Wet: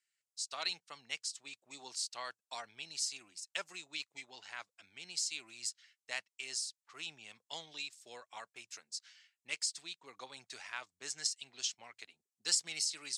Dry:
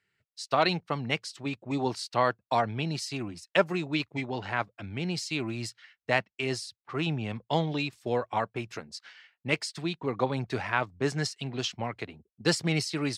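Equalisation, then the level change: band-pass 7500 Hz, Q 2; +5.5 dB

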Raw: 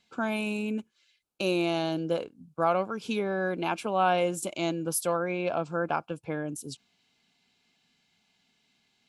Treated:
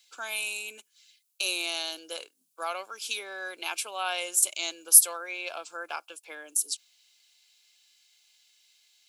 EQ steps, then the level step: HPF 330 Hz 24 dB/oct; tilt +4 dB/oct; high shelf 2000 Hz +12 dB; -9.5 dB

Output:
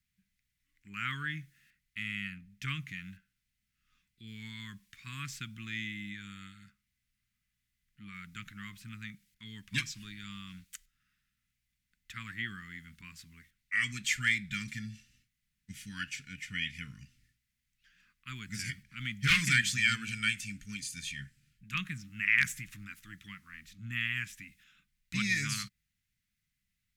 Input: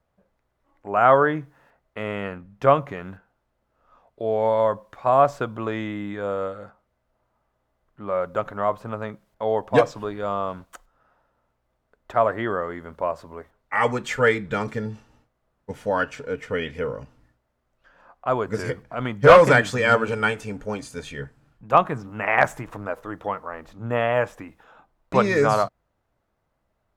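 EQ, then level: elliptic band-stop 190–2100 Hz, stop band 80 dB; tone controls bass -10 dB, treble +4 dB; 0.0 dB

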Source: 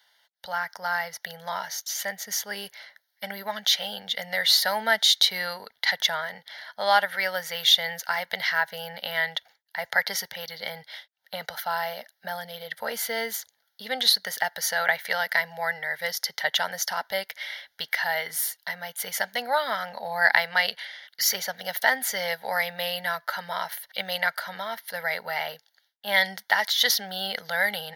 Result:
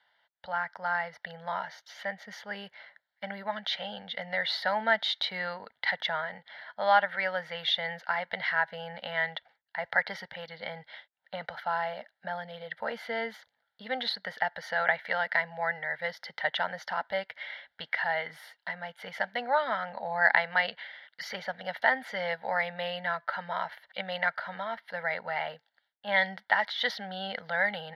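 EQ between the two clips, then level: LPF 11000 Hz 12 dB/oct; air absorption 400 m; bell 410 Hz -6 dB 0.24 oct; 0.0 dB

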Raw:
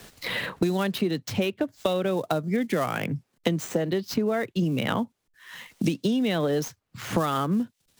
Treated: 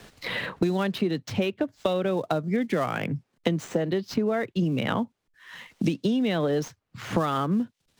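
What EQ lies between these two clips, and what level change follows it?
high shelf 7200 Hz -11.5 dB; 0.0 dB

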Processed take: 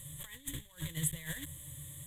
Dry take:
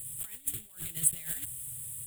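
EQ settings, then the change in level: ripple EQ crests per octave 1.1, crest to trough 12 dB; dynamic EQ 4800 Hz, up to -4 dB, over -51 dBFS, Q 1.5; air absorption 65 m; +3.0 dB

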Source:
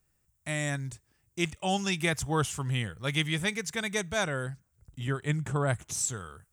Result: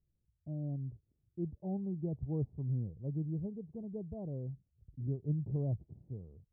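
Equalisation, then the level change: Gaussian blur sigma 18 samples; air absorption 500 m; -3.0 dB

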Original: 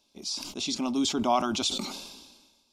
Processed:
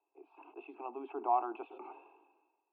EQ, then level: steep high-pass 260 Hz 96 dB/oct; rippled Chebyshev low-pass 2700 Hz, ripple 9 dB; fixed phaser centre 390 Hz, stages 8; 0.0 dB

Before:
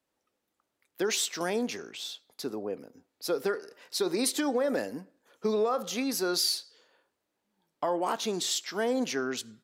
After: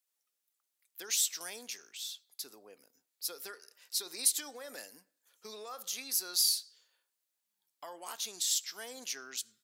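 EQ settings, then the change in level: pre-emphasis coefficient 0.97; +2.0 dB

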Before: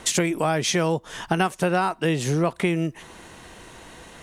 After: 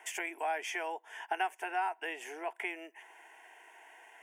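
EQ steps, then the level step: HPF 540 Hz 24 dB/oct; band shelf 7500 Hz -8.5 dB; fixed phaser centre 810 Hz, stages 8; -6.5 dB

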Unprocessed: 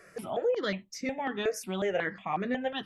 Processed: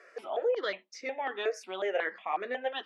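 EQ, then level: HPF 390 Hz 24 dB/oct; LPF 4500 Hz 12 dB/oct; 0.0 dB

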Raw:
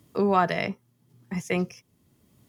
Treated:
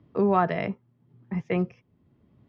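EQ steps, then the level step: air absorption 240 m; tape spacing loss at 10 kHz 22 dB; dynamic EQ 5300 Hz, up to +4 dB, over -49 dBFS, Q 0.93; +2.0 dB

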